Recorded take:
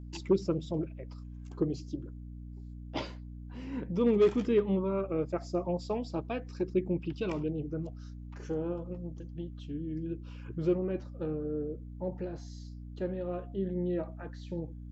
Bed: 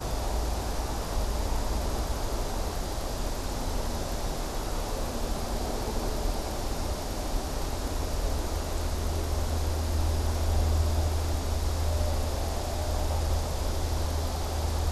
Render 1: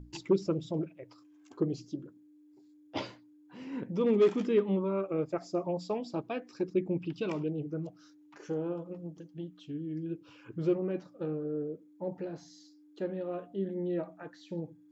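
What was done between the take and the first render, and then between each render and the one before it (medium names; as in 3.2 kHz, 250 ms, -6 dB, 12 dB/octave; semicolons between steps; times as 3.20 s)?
hum notches 60/120/180/240 Hz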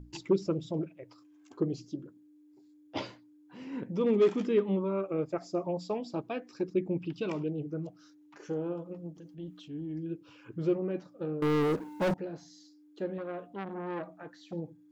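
9.13–9.99 s: transient shaper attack -4 dB, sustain +5 dB; 11.42–12.14 s: waveshaping leveller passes 5; 13.18–14.53 s: transformer saturation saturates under 1.1 kHz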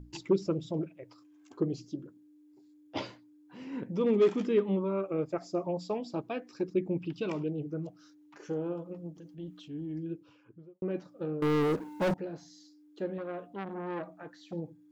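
9.96–10.82 s: studio fade out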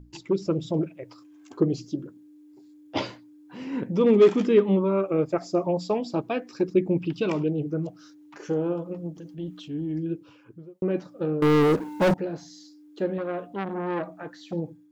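level rider gain up to 8 dB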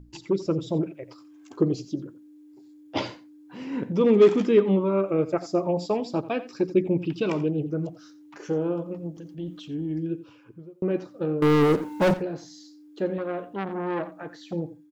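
delay 87 ms -16 dB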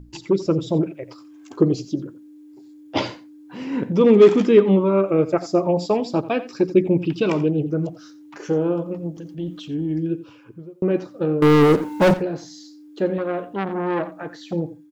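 trim +5.5 dB; peak limiter -3 dBFS, peak gain reduction 1 dB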